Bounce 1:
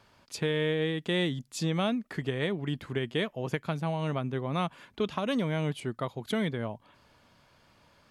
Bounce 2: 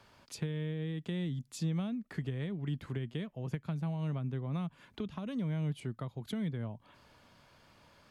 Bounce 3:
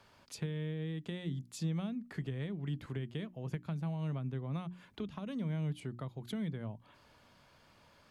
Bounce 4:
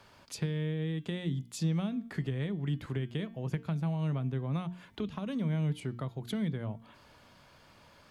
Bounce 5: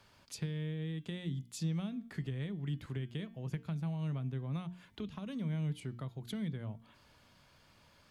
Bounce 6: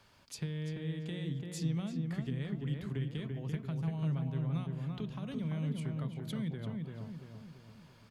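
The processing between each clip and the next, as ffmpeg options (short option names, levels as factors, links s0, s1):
-filter_complex "[0:a]acrossover=split=210[s0][s1];[s1]acompressor=threshold=0.00631:ratio=6[s2];[s0][s2]amix=inputs=2:normalize=0"
-af "bandreject=f=60:t=h:w=6,bandreject=f=120:t=h:w=6,bandreject=f=180:t=h:w=6,bandreject=f=240:t=h:w=6,bandreject=f=300:t=h:w=6,bandreject=f=360:t=h:w=6,volume=0.841"
-af "bandreject=f=227.2:t=h:w=4,bandreject=f=454.4:t=h:w=4,bandreject=f=681.6:t=h:w=4,bandreject=f=908.8:t=h:w=4,bandreject=f=1136:t=h:w=4,bandreject=f=1363.2:t=h:w=4,bandreject=f=1590.4:t=h:w=4,bandreject=f=1817.6:t=h:w=4,bandreject=f=2044.8:t=h:w=4,bandreject=f=2272:t=h:w=4,bandreject=f=2499.2:t=h:w=4,bandreject=f=2726.4:t=h:w=4,bandreject=f=2953.6:t=h:w=4,bandreject=f=3180.8:t=h:w=4,bandreject=f=3408:t=h:w=4,bandreject=f=3635.2:t=h:w=4,bandreject=f=3862.4:t=h:w=4,bandreject=f=4089.6:t=h:w=4,bandreject=f=4316.8:t=h:w=4,bandreject=f=4544:t=h:w=4,bandreject=f=4771.2:t=h:w=4,bandreject=f=4998.4:t=h:w=4,bandreject=f=5225.6:t=h:w=4,bandreject=f=5452.8:t=h:w=4,bandreject=f=5680:t=h:w=4,bandreject=f=5907.2:t=h:w=4,bandreject=f=6134.4:t=h:w=4,volume=1.78"
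-af "equalizer=f=650:w=0.37:g=-5,volume=0.708"
-filter_complex "[0:a]asplit=2[s0][s1];[s1]adelay=340,lowpass=f=1900:p=1,volume=0.708,asplit=2[s2][s3];[s3]adelay=340,lowpass=f=1900:p=1,volume=0.51,asplit=2[s4][s5];[s5]adelay=340,lowpass=f=1900:p=1,volume=0.51,asplit=2[s6][s7];[s7]adelay=340,lowpass=f=1900:p=1,volume=0.51,asplit=2[s8][s9];[s9]adelay=340,lowpass=f=1900:p=1,volume=0.51,asplit=2[s10][s11];[s11]adelay=340,lowpass=f=1900:p=1,volume=0.51,asplit=2[s12][s13];[s13]adelay=340,lowpass=f=1900:p=1,volume=0.51[s14];[s0][s2][s4][s6][s8][s10][s12][s14]amix=inputs=8:normalize=0"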